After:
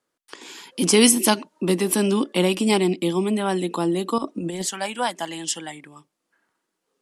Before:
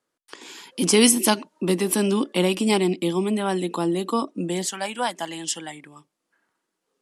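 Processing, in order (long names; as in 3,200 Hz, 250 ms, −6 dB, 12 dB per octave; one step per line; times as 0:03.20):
0:04.18–0:04.62: compressor whose output falls as the input rises −28 dBFS, ratio −0.5
level +1 dB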